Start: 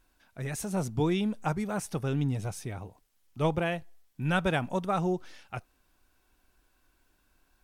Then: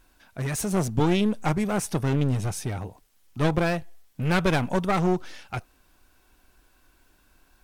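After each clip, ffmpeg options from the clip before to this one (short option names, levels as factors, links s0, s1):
-af "aeval=exprs='clip(val(0),-1,0.02)':c=same,volume=2.51"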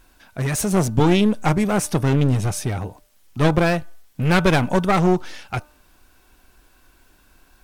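-af "bandreject=f=299.4:t=h:w=4,bandreject=f=598.8:t=h:w=4,bandreject=f=898.2:t=h:w=4,bandreject=f=1197.6:t=h:w=4,bandreject=f=1497:t=h:w=4,volume=2"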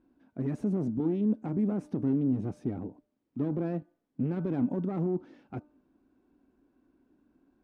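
-af "alimiter=limit=0.2:level=0:latency=1:release=27,bandpass=f=270:t=q:w=3.1:csg=0,volume=1.19"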